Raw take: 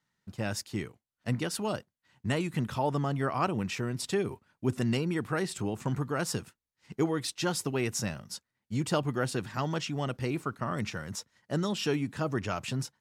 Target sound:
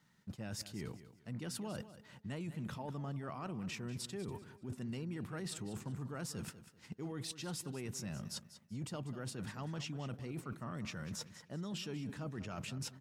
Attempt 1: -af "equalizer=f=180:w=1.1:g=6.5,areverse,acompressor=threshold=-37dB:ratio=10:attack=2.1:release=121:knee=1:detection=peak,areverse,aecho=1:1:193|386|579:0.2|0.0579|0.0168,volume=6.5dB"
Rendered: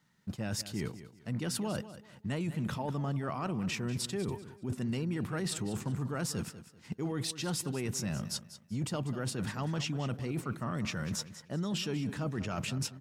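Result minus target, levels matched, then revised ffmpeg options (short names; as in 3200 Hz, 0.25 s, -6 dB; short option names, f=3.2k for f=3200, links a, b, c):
compressor: peak gain reduction -8 dB
-af "equalizer=f=180:w=1.1:g=6.5,areverse,acompressor=threshold=-46dB:ratio=10:attack=2.1:release=121:knee=1:detection=peak,areverse,aecho=1:1:193|386|579:0.2|0.0579|0.0168,volume=6.5dB"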